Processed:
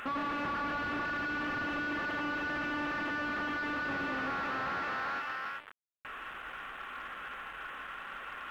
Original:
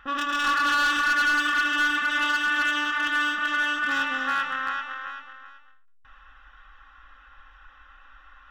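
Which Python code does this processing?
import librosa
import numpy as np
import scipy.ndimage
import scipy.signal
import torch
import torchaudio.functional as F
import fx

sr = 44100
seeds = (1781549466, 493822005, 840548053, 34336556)

y = fx.delta_mod(x, sr, bps=16000, step_db=-46.0)
y = fx.highpass(y, sr, hz=290.0, slope=6)
y = fx.leveller(y, sr, passes=2)
y = y * librosa.db_to_amplitude(1.5)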